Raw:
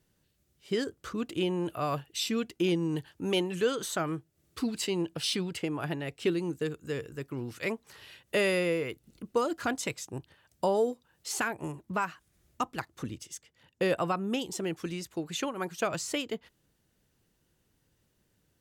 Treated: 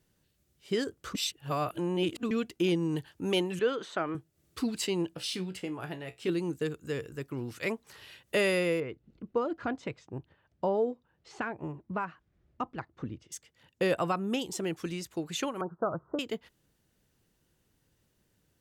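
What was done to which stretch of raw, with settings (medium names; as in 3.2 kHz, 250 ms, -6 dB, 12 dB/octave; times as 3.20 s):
1.15–2.31 s: reverse
3.59–4.15 s: band-pass 240–2900 Hz
5.15–6.29 s: feedback comb 62 Hz, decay 0.19 s, mix 80%
8.80–13.32 s: tape spacing loss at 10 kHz 33 dB
15.61–16.19 s: steep low-pass 1.4 kHz 72 dB/octave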